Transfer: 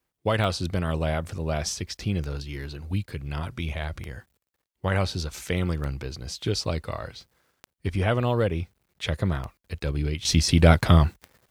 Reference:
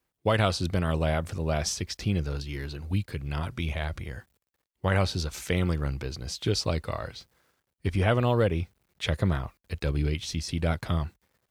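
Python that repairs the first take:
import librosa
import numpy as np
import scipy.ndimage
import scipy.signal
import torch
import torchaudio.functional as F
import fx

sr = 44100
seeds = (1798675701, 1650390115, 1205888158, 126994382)

y = fx.fix_declick_ar(x, sr, threshold=10.0)
y = fx.fix_level(y, sr, at_s=10.25, step_db=-11.0)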